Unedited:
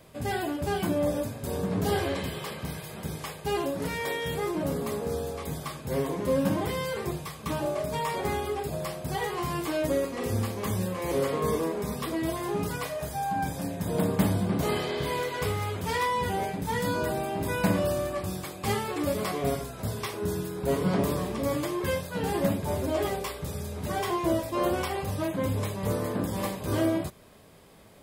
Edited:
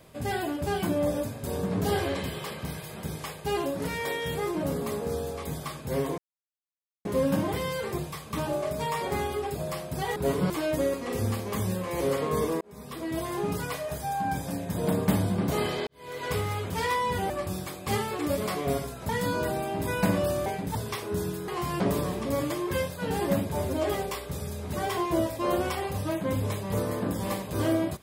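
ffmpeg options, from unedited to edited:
-filter_complex "[0:a]asplit=12[a][b][c][d][e][f][g][h][i][j][k][l];[a]atrim=end=6.18,asetpts=PTS-STARTPTS,afade=t=out:st=6.176:d=0.004:c=hsin,apad=pad_dur=0.87[m];[b]atrim=start=6.18:end=9.292,asetpts=PTS-STARTPTS,afade=t=in:d=0.004:c=hsin[n];[c]atrim=start=20.588:end=20.932[o];[d]atrim=start=9.608:end=11.72,asetpts=PTS-STARTPTS,afade=t=out:st=2.108:d=0.004:c=hsin[p];[e]atrim=start=11.72:end=14.98,asetpts=PTS-STARTPTS,afade=t=in:d=0.67,afade=t=out:st=3.256:d=0.004:c=hsin[q];[f]atrim=start=14.98:end=16.412,asetpts=PTS-STARTPTS,afade=t=in:d=0.39:c=qua[r];[g]atrim=start=18.068:end=19.862[s];[h]atrim=start=16.698:end=18.072[t];[i]atrim=start=16.408:end=16.702[u];[j]atrim=start=19.858:end=20.592[v];[k]atrim=start=9.288:end=9.612[w];[l]atrim=start=20.928[x];[m][n]concat=n=2:v=0:a=1[y];[y][o]acrossfade=d=0.004:c1=hsin:c2=hsin[z];[p][q][r]concat=n=3:v=0:a=1[aa];[z][aa]acrossfade=d=0.004:c1=hsin:c2=hsin[ab];[ab][s]acrossfade=d=0.004:c1=hsin:c2=hsin[ac];[ac][t]acrossfade=d=0.004:c1=hsin:c2=hsin[ad];[ad][u]acrossfade=d=0.004:c1=hsin:c2=hsin[ae];[ae][v]acrossfade=d=0.004:c1=hsin:c2=hsin[af];[af][w]acrossfade=d=0.004:c1=hsin:c2=hsin[ag];[ag][x]acrossfade=d=0.004:c1=hsin:c2=hsin"

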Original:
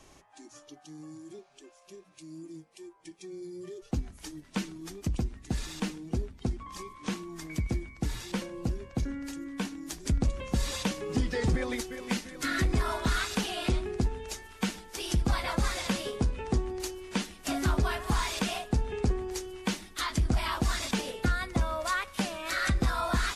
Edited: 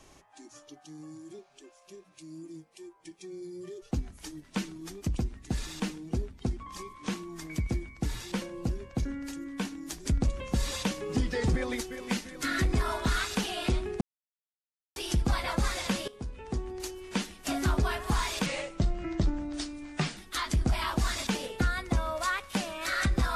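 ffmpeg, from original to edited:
-filter_complex "[0:a]asplit=6[a][b][c][d][e][f];[a]atrim=end=14.01,asetpts=PTS-STARTPTS,afade=t=out:st=14.006:d=0.004:c=hsin[g];[b]atrim=start=14.01:end=14.96,asetpts=PTS-STARTPTS,volume=0[h];[c]atrim=start=14.96:end=16.08,asetpts=PTS-STARTPTS,afade=t=in:d=0.004:c=hsin,afade=t=out:st=1.116:d=0.004:c=hsin:silence=0.16788[i];[d]atrim=start=16.08:end=18.464,asetpts=PTS-STARTPTS,afade=t=in:d=1.03:silence=0.16788[j];[e]atrim=start=18.46:end=19.81,asetpts=PTS-STARTPTS,asetrate=34839,aresample=44100[k];[f]atrim=start=19.806[l];[g][h][i][j]concat=n=4:v=0:a=1[m];[m][k]acrossfade=d=0.004:c1=hsin:c2=hsin[n];[n][l]acrossfade=d=0.004:c1=hsin:c2=hsin"

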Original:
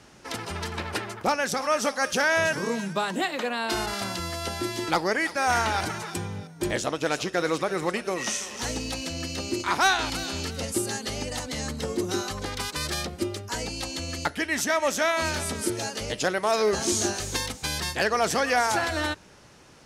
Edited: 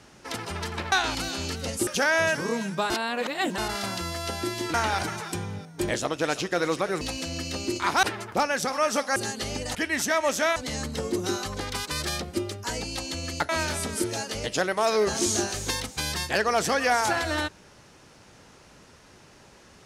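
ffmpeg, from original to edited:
-filter_complex "[0:a]asplit=12[a][b][c][d][e][f][g][h][i][j][k][l];[a]atrim=end=0.922[m];[b]atrim=start=9.868:end=10.822[n];[c]atrim=start=2.048:end=3.082[o];[d]atrim=start=3.078:end=3.762,asetpts=PTS-STARTPTS,areverse[p];[e]atrim=start=3.758:end=4.922[q];[f]atrim=start=5.558:end=7.832[r];[g]atrim=start=8.848:end=9.872[s];[h]atrim=start=0.918:end=2.052[t];[i]atrim=start=10.818:end=11.412[u];[j]atrim=start=14.338:end=15.152[v];[k]atrim=start=11.408:end=14.342[w];[l]atrim=start=15.148[x];[m][n]acrossfade=d=0.004:c1=hsin:c2=hsin[y];[y][o]acrossfade=d=0.004:c1=hsin:c2=hsin[z];[z][p]acrossfade=d=0.004:c1=hsin:c2=hsin[aa];[aa][q]acrossfade=d=0.004:c1=hsin:c2=hsin[ab];[ab][r]acrossfade=d=0.004:c1=hsin:c2=hsin[ac];[ac][s]acrossfade=d=0.004:c1=hsin:c2=hsin[ad];[ad][t]acrossfade=d=0.004:c1=hsin:c2=hsin[ae];[ae][u]acrossfade=d=0.004:c1=hsin:c2=hsin[af];[af][v]acrossfade=d=0.004:c1=hsin:c2=hsin[ag];[ag][w]acrossfade=d=0.004:c1=hsin:c2=hsin[ah];[ah][x]acrossfade=d=0.004:c1=hsin:c2=hsin"

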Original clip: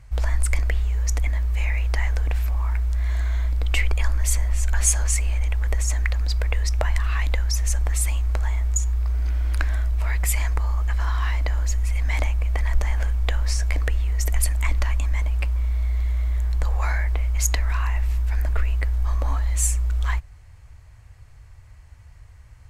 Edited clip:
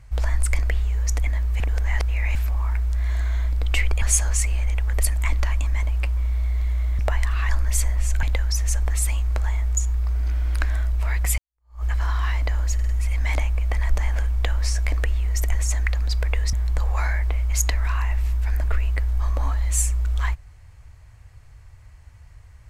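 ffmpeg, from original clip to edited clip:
-filter_complex "[0:a]asplit=14[a][b][c][d][e][f][g][h][i][j][k][l][m][n];[a]atrim=end=1.602[o];[b]atrim=start=1.598:end=2.352,asetpts=PTS-STARTPTS,areverse[p];[c]atrim=start=2.348:end=4.022[q];[d]atrim=start=4.758:end=5.742[r];[e]atrim=start=14.388:end=16.382[s];[f]atrim=start=6.718:end=7.222[t];[g]atrim=start=4.018:end=4.762[u];[h]atrim=start=7.218:end=10.37,asetpts=PTS-STARTPTS,afade=t=out:st=3.148:d=0.004:c=hsin[v];[i]atrim=start=10.37:end=11.782,asetpts=PTS-STARTPTS,afade=t=in:d=0.46:c=exp[w];[j]atrim=start=11.728:end=11.782[x];[k]atrim=start=11.728:end=11.782[y];[l]atrim=start=11.728:end=14.392[z];[m]atrim=start=5.738:end=6.722[aa];[n]atrim=start=16.378[ab];[o][p]acrossfade=d=0.004:c1=hsin:c2=hsin[ac];[ac][q]acrossfade=d=0.004:c1=hsin:c2=hsin[ad];[ad][r]acrossfade=d=0.004:c1=hsin:c2=hsin[ae];[ae][s]acrossfade=d=0.004:c1=hsin:c2=hsin[af];[af][t]acrossfade=d=0.004:c1=hsin:c2=hsin[ag];[ag][u]acrossfade=d=0.004:c1=hsin:c2=hsin[ah];[v][w]concat=n=2:v=0:a=1[ai];[ah][ai]acrossfade=d=0.004:c1=hsin:c2=hsin[aj];[aj][x]acrossfade=d=0.004:c1=hsin:c2=hsin[ak];[ak][y]acrossfade=d=0.004:c1=hsin:c2=hsin[al];[al][z]acrossfade=d=0.004:c1=hsin:c2=hsin[am];[am][aa]acrossfade=d=0.004:c1=hsin:c2=hsin[an];[an][ab]acrossfade=d=0.004:c1=hsin:c2=hsin"

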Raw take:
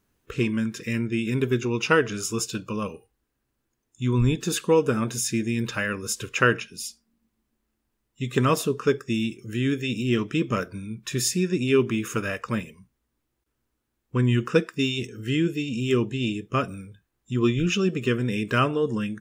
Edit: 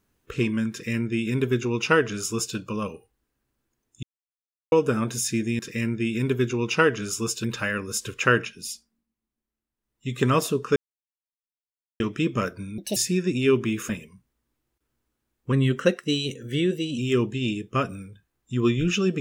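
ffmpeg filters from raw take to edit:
-filter_complex "[0:a]asplit=14[a][b][c][d][e][f][g][h][i][j][k][l][m][n];[a]atrim=end=4.03,asetpts=PTS-STARTPTS,afade=t=out:st=4.026:d=0.004:c=hsin[o];[b]atrim=start=4.03:end=4.72,asetpts=PTS-STARTPTS,volume=0[p];[c]atrim=start=4.72:end=5.592,asetpts=PTS-STARTPTS,afade=t=in:d=0.004:c=hsin[q];[d]atrim=start=0.708:end=2.562[r];[e]atrim=start=5.588:end=7.23,asetpts=PTS-STARTPTS,afade=t=out:st=1.282:d=0.36:silence=0.251189[s];[f]atrim=start=7.23:end=7.91,asetpts=PTS-STARTPTS,volume=-12dB[t];[g]atrim=start=7.91:end=8.91,asetpts=PTS-STARTPTS,afade=t=in:d=0.36:silence=0.251189,afade=t=out:st=0.996:d=0.004:c=hsin[u];[h]atrim=start=8.91:end=10.15,asetpts=PTS-STARTPTS,volume=0[v];[i]atrim=start=10.15:end=10.934,asetpts=PTS-STARTPTS,afade=t=in:d=0.004:c=hsin[w];[j]atrim=start=10.93:end=11.22,asetpts=PTS-STARTPTS,asetrate=70119,aresample=44100,atrim=end_sample=8043,asetpts=PTS-STARTPTS[x];[k]atrim=start=11.216:end=12.152[y];[l]atrim=start=12.548:end=14.184[z];[m]atrim=start=14.18:end=15.77,asetpts=PTS-STARTPTS,asetrate=48069,aresample=44100,atrim=end_sample=64329,asetpts=PTS-STARTPTS[aa];[n]atrim=start=15.766[ab];[o][p][q]concat=n=3:v=0:a=1[ac];[ac][r]acrossfade=d=0.004:c1=hsin:c2=hsin[ad];[s][t][u][v][w]concat=n=5:v=0:a=1[ae];[ad][ae]acrossfade=d=0.004:c1=hsin:c2=hsin[af];[af][x]acrossfade=d=0.004:c1=hsin:c2=hsin[ag];[ag][y]acrossfade=d=0.004:c1=hsin:c2=hsin[ah];[ah][z]acrossfade=d=0.004:c1=hsin:c2=hsin[ai];[ai][aa]acrossfade=d=0.004:c1=hsin:c2=hsin[aj];[aj][ab]acrossfade=d=0.004:c1=hsin:c2=hsin"

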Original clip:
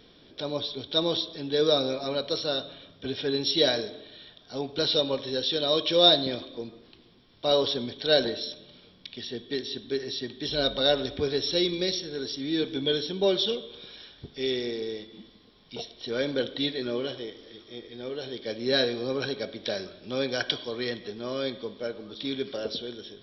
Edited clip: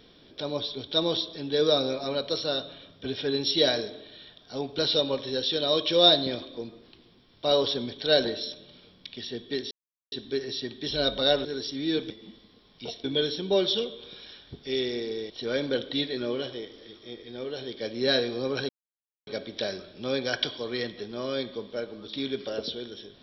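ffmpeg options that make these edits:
-filter_complex "[0:a]asplit=7[a][b][c][d][e][f][g];[a]atrim=end=9.71,asetpts=PTS-STARTPTS,afade=t=out:st=9.706:d=0.004:c=hsin,apad=pad_dur=0.41[h];[b]atrim=start=9.71:end=11.042,asetpts=PTS-STARTPTS,afade=t=in:d=0.004:c=hsin[i];[c]atrim=start=12.098:end=12.752[j];[d]atrim=start=15.008:end=15.952[k];[e]atrim=start=12.748:end=15.012[l];[f]atrim=start=15.948:end=19.34,asetpts=PTS-STARTPTS,afade=t=out:st=3.388:d=0.004:c=hsin,apad=pad_dur=0.58[m];[g]atrim=start=19.34,asetpts=PTS-STARTPTS,afade=t=in:d=0.004:c=hsin[n];[h][i]concat=n=2:v=0:a=1[o];[o][j]acrossfade=d=0.004:c1=hsin:c2=hsin[p];[p][k]acrossfade=d=0.004:c1=hsin:c2=hsin[q];[q][l]acrossfade=d=0.004:c1=hsin:c2=hsin[r];[m][n]concat=n=2:v=0:a=1[s];[r][s]acrossfade=d=0.004:c1=hsin:c2=hsin"

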